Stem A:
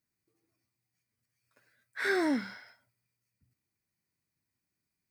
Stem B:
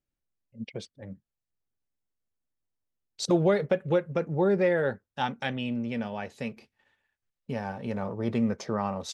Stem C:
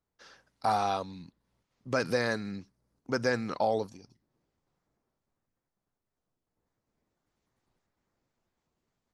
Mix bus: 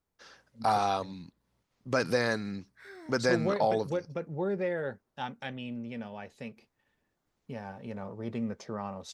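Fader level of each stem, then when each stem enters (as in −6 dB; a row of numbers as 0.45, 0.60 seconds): −20.0, −7.5, +1.0 decibels; 0.80, 0.00, 0.00 seconds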